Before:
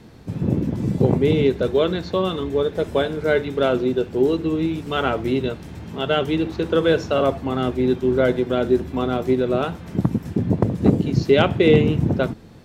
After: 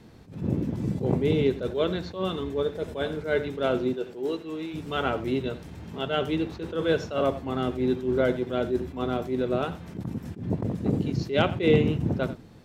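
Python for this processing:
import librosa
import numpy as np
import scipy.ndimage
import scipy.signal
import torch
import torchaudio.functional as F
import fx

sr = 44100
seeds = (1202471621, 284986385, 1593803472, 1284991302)

y = fx.highpass(x, sr, hz=fx.line((3.93, 270.0), (4.73, 760.0)), slope=6, at=(3.93, 4.73), fade=0.02)
y = y + 10.0 ** (-16.0 / 20.0) * np.pad(y, (int(90 * sr / 1000.0), 0))[:len(y)]
y = fx.attack_slew(y, sr, db_per_s=150.0)
y = y * librosa.db_to_amplitude(-5.5)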